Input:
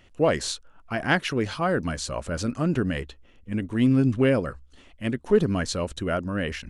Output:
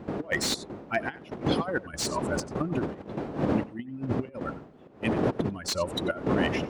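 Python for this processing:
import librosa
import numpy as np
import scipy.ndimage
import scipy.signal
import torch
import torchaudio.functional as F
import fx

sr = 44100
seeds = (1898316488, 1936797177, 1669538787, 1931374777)

p1 = fx.bin_expand(x, sr, power=2.0)
p2 = fx.dmg_wind(p1, sr, seeds[0], corner_hz=310.0, level_db=-30.0)
p3 = fx.highpass(p2, sr, hz=90.0, slope=6)
p4 = fx.low_shelf(p3, sr, hz=140.0, db=-11.5)
p5 = fx.over_compress(p4, sr, threshold_db=-33.0, ratio=-0.5)
p6 = fx.step_gate(p5, sr, bpm=194, pattern='.xxxxxx.', floor_db=-12.0, edge_ms=4.5)
p7 = p6 + fx.echo_single(p6, sr, ms=92, db=-19.0, dry=0)
p8 = fx.slew_limit(p7, sr, full_power_hz=120.0)
y = p8 * 10.0 ** (6.0 / 20.0)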